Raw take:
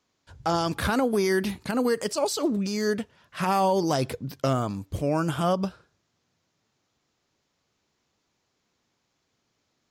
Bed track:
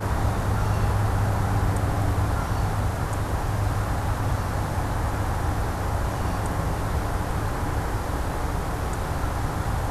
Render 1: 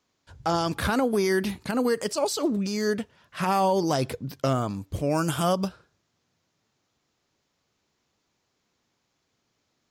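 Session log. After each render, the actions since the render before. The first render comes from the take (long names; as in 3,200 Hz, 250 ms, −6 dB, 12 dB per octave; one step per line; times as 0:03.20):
0:05.09–0:05.67: high-shelf EQ 3,700 Hz → 5,700 Hz +11 dB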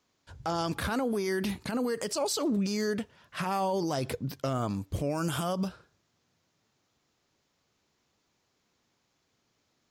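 brickwall limiter −22 dBFS, peak gain reduction 9 dB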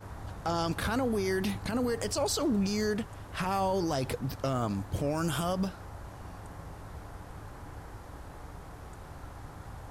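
mix in bed track −18.5 dB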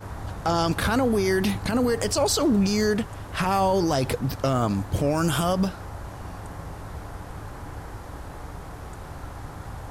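level +7.5 dB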